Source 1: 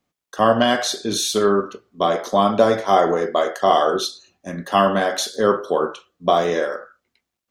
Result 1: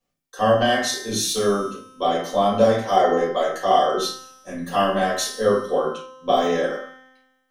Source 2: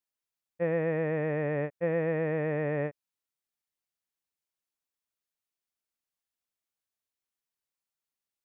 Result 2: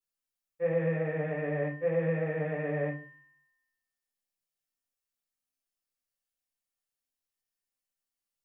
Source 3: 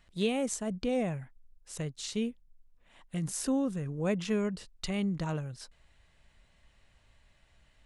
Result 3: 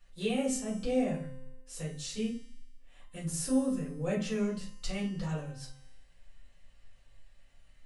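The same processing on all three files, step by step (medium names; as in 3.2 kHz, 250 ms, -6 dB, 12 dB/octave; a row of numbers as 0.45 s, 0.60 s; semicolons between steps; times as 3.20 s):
treble shelf 3.5 kHz +6.5 dB; feedback comb 260 Hz, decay 1.2 s, mix 80%; simulated room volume 150 m³, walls furnished, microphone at 4.3 m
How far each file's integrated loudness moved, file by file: -1.5 LU, -1.0 LU, -0.5 LU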